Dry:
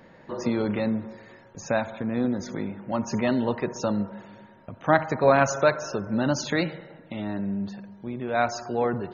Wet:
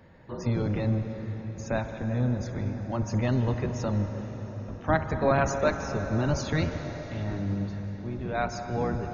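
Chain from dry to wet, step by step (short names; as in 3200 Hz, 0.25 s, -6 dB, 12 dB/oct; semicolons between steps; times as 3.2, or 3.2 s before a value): octaver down 1 oct, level +4 dB; on a send: reverb RT60 5.5 s, pre-delay 0.118 s, DRR 7 dB; on the sum: gain -5.5 dB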